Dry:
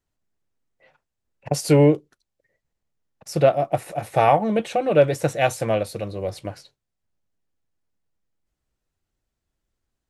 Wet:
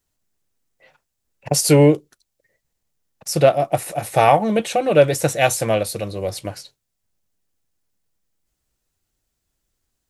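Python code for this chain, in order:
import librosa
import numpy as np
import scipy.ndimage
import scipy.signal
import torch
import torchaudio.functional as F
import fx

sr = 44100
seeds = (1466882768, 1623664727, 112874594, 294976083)

y = fx.high_shelf(x, sr, hz=4200.0, db=11.0)
y = F.gain(torch.from_numpy(y), 2.5).numpy()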